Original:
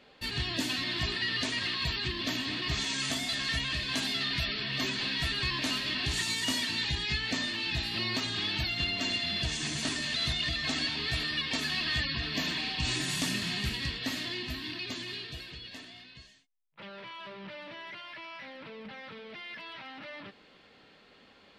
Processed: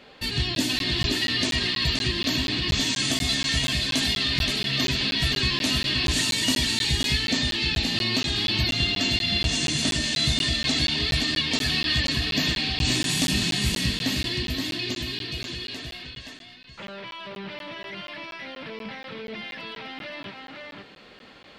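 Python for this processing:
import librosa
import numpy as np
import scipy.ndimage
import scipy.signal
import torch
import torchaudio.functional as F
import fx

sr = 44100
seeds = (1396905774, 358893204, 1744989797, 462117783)

y = x + 10.0 ** (-5.0 / 20.0) * np.pad(x, (int(523 * sr / 1000.0), 0))[:len(x)]
y = fx.dynamic_eq(y, sr, hz=1300.0, q=0.72, threshold_db=-48.0, ratio=4.0, max_db=-7)
y = fx.buffer_crackle(y, sr, first_s=0.55, period_s=0.24, block=512, kind='zero')
y = F.gain(torch.from_numpy(y), 8.5).numpy()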